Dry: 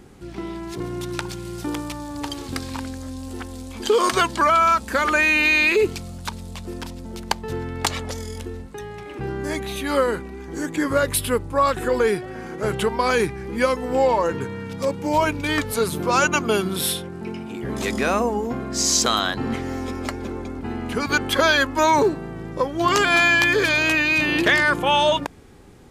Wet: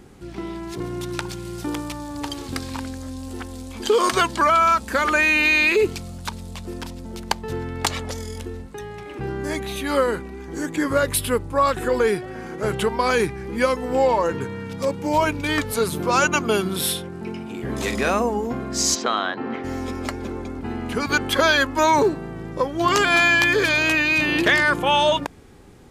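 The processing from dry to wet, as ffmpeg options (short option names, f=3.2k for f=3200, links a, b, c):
-filter_complex "[0:a]asettb=1/sr,asplit=3[a][b][c];[a]atrim=end=17.534[d];[b]atrim=start=17.53:end=18.1,asetpts=PTS-STARTPTS,afade=t=in:d=0.004:c=qsin,afade=t=out:st=0.566:d=0.004:c=qsin,asplit=2[e][f];[f]adelay=44,volume=-7.5dB[g];[e][g]amix=inputs=2:normalize=0,atrim=end_sample=25137[h];[c]atrim=start=18.096[i];[d][h]acrossfade=d=0.004:c1=hsin:c2=qsin[j];[j][i]acrossfade=d=0.004:c1=qsin:c2=hsin,asplit=3[k][l][m];[k]afade=t=out:st=18.94:d=0.02[n];[l]highpass=260,lowpass=2.5k,afade=t=in:st=18.94:d=0.02,afade=t=out:st=19.63:d=0.02[o];[m]afade=t=in:st=19.63:d=0.02[p];[n][o][p]amix=inputs=3:normalize=0"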